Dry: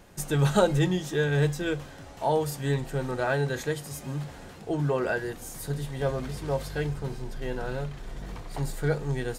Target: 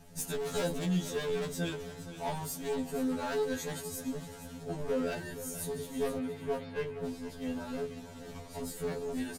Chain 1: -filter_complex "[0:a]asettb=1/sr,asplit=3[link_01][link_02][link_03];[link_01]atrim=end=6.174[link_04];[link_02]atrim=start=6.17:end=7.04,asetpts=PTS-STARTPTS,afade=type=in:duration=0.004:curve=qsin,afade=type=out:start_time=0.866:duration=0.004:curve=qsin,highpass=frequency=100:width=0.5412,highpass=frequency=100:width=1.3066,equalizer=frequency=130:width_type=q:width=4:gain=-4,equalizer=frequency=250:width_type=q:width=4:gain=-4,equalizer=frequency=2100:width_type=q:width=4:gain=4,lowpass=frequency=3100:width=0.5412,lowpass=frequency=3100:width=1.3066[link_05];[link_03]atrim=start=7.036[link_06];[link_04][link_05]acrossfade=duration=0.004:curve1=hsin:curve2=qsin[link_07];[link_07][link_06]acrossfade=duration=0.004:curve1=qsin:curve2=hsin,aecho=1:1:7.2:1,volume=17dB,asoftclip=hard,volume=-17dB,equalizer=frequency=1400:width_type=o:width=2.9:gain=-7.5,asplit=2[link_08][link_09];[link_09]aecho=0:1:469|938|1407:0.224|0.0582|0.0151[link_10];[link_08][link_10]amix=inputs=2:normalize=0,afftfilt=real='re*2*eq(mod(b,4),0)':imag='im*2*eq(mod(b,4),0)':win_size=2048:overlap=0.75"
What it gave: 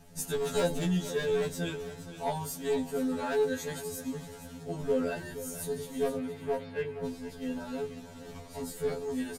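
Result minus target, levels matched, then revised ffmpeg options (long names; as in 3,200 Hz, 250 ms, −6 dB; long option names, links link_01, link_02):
gain into a clipping stage and back: distortion −6 dB
-filter_complex "[0:a]asettb=1/sr,asplit=3[link_01][link_02][link_03];[link_01]atrim=end=6.174[link_04];[link_02]atrim=start=6.17:end=7.04,asetpts=PTS-STARTPTS,afade=type=in:duration=0.004:curve=qsin,afade=type=out:start_time=0.866:duration=0.004:curve=qsin,highpass=frequency=100:width=0.5412,highpass=frequency=100:width=1.3066,equalizer=frequency=130:width_type=q:width=4:gain=-4,equalizer=frequency=250:width_type=q:width=4:gain=-4,equalizer=frequency=2100:width_type=q:width=4:gain=4,lowpass=frequency=3100:width=0.5412,lowpass=frequency=3100:width=1.3066[link_05];[link_03]atrim=start=7.036[link_06];[link_04][link_05]acrossfade=duration=0.004:curve1=hsin:curve2=qsin[link_07];[link_07][link_06]acrossfade=duration=0.004:curve1=qsin:curve2=hsin,aecho=1:1:7.2:1,volume=23dB,asoftclip=hard,volume=-23dB,equalizer=frequency=1400:width_type=o:width=2.9:gain=-7.5,asplit=2[link_08][link_09];[link_09]aecho=0:1:469|938|1407:0.224|0.0582|0.0151[link_10];[link_08][link_10]amix=inputs=2:normalize=0,afftfilt=real='re*2*eq(mod(b,4),0)':imag='im*2*eq(mod(b,4),0)':win_size=2048:overlap=0.75"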